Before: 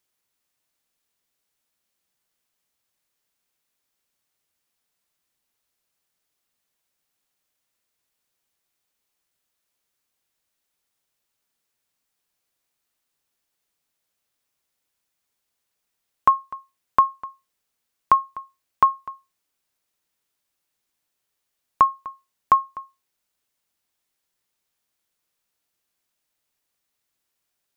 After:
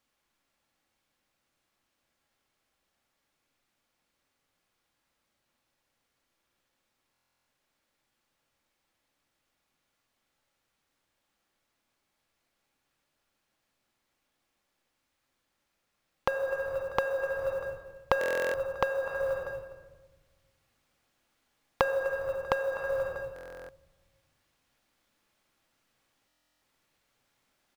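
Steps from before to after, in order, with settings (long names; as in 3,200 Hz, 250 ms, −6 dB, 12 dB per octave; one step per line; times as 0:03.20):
sub-harmonics by changed cycles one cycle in 2, inverted
repeating echo 160 ms, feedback 60%, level −24 dB
on a send at −3.5 dB: convolution reverb RT60 1.3 s, pre-delay 4 ms
on the sum: dynamic equaliser 390 Hz, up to +5 dB, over −27 dBFS, Q 0.74
low-pass filter 2,500 Hz 6 dB per octave
in parallel at −2 dB: brickwall limiter −16.5 dBFS, peak gain reduction 14.5 dB
on the sum: downward compressor 12 to 1, threshold −28 dBFS, peak gain reduction 22 dB
floating-point word with a short mantissa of 4 bits
speech leveller 0.5 s
buffer that repeats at 0:07.12/0:18.19/0:23.34/0:26.27, samples 1,024, times 14
level +2 dB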